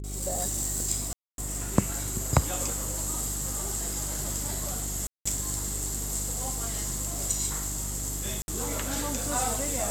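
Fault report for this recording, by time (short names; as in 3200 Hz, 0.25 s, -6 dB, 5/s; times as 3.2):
hum 50 Hz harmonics 8 -36 dBFS
1.13–1.38 gap 0.252 s
5.07–5.25 gap 0.185 s
8.42–8.48 gap 61 ms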